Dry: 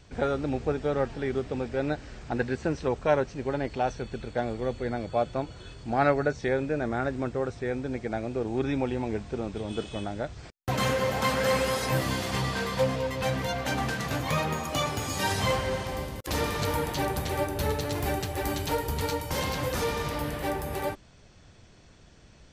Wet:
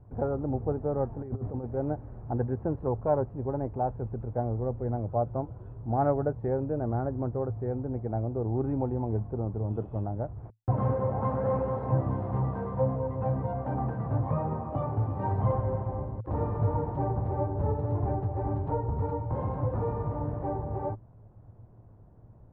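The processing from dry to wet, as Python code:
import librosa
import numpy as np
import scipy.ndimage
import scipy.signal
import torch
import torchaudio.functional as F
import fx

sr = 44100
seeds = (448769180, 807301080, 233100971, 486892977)

y = fx.over_compress(x, sr, threshold_db=-33.0, ratio=-0.5, at=(1.21, 1.65))
y = scipy.signal.sosfilt(scipy.signal.cheby1(3, 1.0, 950.0, 'lowpass', fs=sr, output='sos'), y)
y = fx.peak_eq(y, sr, hz=110.0, db=13.0, octaves=0.35)
y = y * librosa.db_to_amplitude(-1.5)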